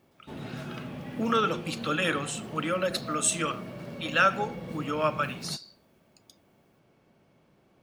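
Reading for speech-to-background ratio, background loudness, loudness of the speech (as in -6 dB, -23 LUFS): 11.5 dB, -40.0 LUFS, -28.5 LUFS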